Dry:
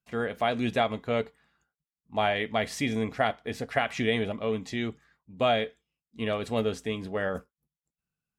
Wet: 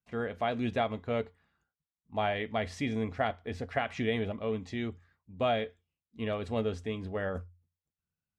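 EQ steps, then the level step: tape spacing loss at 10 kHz 20 dB; peaking EQ 88 Hz +14.5 dB 0.2 oct; treble shelf 5.8 kHz +10 dB; -3.0 dB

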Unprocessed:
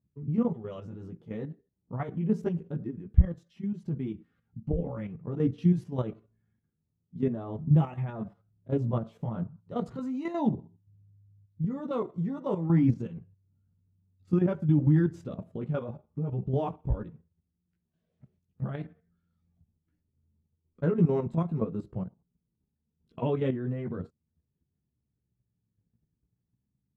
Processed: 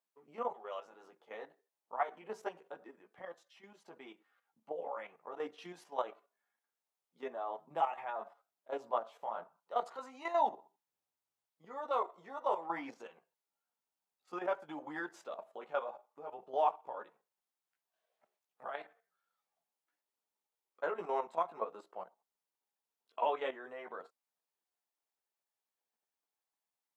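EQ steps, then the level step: ladder high-pass 640 Hz, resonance 40%; +9.5 dB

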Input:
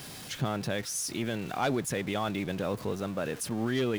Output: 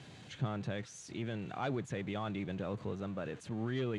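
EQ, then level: tone controls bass +10 dB, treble -3 dB; dynamic bell 1.2 kHz, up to +6 dB, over -52 dBFS, Q 5.2; cabinet simulation 110–7000 Hz, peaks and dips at 160 Hz -5 dB, 240 Hz -5 dB, 1.2 kHz -4 dB, 5.2 kHz -10 dB; -8.5 dB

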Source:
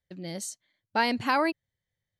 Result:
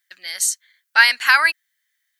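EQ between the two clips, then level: resonant high-pass 1.6 kHz, resonance Q 3.1; treble shelf 3 kHz +9 dB; treble shelf 9.3 kHz +7 dB; +6.5 dB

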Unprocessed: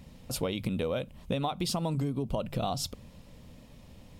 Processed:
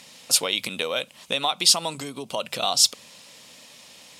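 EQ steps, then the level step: band-pass 110–7800 Hz; tilt EQ +4.5 dB/octave; bass shelf 300 Hz -7 dB; +8.5 dB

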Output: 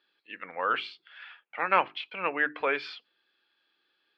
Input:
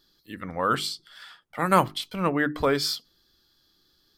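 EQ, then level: cabinet simulation 430–3300 Hz, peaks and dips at 480 Hz +3 dB, 850 Hz +4 dB, 1.6 kHz +6 dB, 2.6 kHz +8 dB; peaking EQ 2.4 kHz +8 dB 0.5 oct; -6.0 dB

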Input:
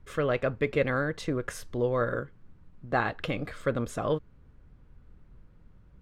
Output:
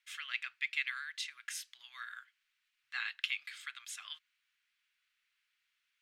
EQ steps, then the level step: inverse Chebyshev high-pass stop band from 540 Hz, stop band 70 dB; treble shelf 3.4 kHz -9.5 dB; +8.5 dB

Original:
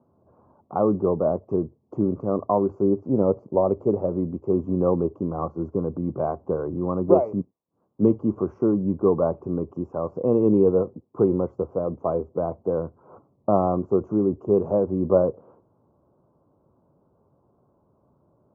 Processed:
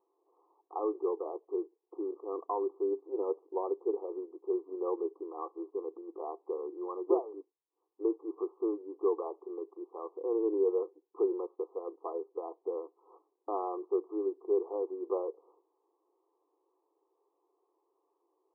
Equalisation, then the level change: brick-wall FIR band-pass 280–1300 Hz; static phaser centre 400 Hz, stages 8; -8.0 dB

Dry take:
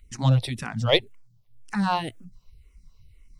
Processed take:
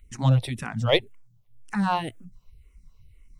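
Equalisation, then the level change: peaking EQ 4.7 kHz -7 dB 0.7 oct; 0.0 dB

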